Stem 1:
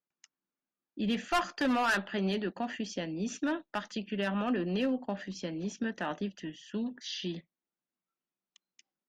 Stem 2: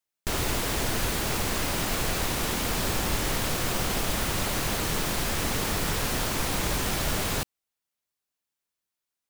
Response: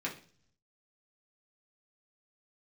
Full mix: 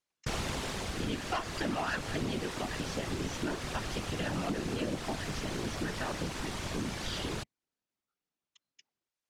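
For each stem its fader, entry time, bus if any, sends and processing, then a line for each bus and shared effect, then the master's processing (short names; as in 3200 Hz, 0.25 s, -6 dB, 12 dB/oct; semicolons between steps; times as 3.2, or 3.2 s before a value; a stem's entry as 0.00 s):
-0.5 dB, 0.00 s, no send, dry
+1.0 dB, 0.00 s, no send, auto duck -10 dB, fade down 0.95 s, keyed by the first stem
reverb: off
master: LPF 7300 Hz 12 dB/oct; whisperiser; compressor 3:1, threshold -31 dBFS, peak gain reduction 6.5 dB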